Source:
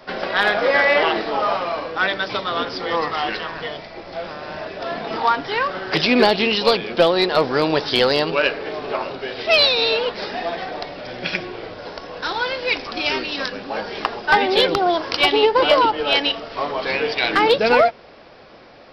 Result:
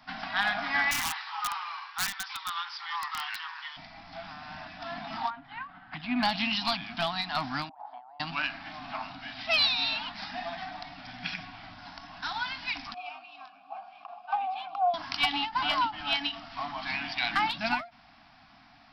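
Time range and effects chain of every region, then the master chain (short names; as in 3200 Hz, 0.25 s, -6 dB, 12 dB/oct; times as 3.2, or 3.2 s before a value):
0.91–3.77 steep high-pass 860 Hz 72 dB/oct + wrapped overs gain 14.5 dB
5.3–6.23 air absorption 410 m + upward expander, over -31 dBFS
7.69–8.2 Butterworth band-pass 780 Hz, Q 2.7 + negative-ratio compressor -37 dBFS
12.94–14.94 dynamic EQ 830 Hz, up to +6 dB, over -32 dBFS, Q 1.7 + vowel filter a
whole clip: elliptic band-stop 280–710 Hz, stop band 40 dB; ending taper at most 180 dB/s; gain -8.5 dB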